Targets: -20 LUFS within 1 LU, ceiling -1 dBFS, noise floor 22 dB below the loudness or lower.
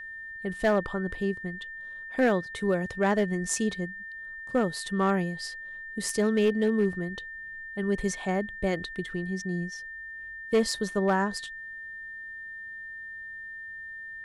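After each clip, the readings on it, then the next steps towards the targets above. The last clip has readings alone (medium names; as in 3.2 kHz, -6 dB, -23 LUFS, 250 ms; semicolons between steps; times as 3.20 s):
clipped samples 0.4%; clipping level -17.0 dBFS; steady tone 1.8 kHz; tone level -38 dBFS; loudness -30.0 LUFS; peak level -17.0 dBFS; loudness target -20.0 LUFS
-> clip repair -17 dBFS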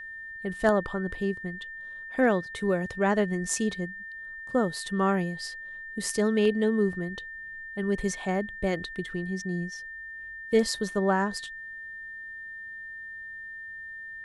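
clipped samples 0.0%; steady tone 1.8 kHz; tone level -38 dBFS
-> band-stop 1.8 kHz, Q 30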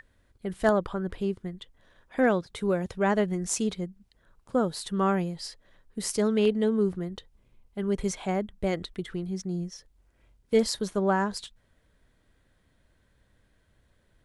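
steady tone not found; loudness -28.5 LUFS; peak level -8.0 dBFS; loudness target -20.0 LUFS
-> trim +8.5 dB; peak limiter -1 dBFS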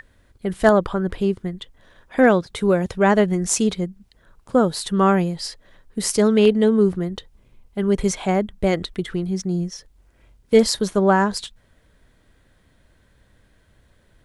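loudness -20.0 LUFS; peak level -1.0 dBFS; noise floor -59 dBFS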